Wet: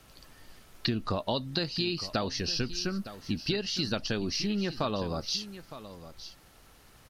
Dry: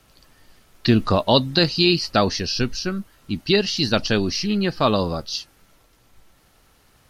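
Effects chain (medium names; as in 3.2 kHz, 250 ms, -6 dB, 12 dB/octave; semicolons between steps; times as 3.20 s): compression 6:1, threshold -28 dBFS, peak gain reduction 16 dB; on a send: delay 911 ms -14 dB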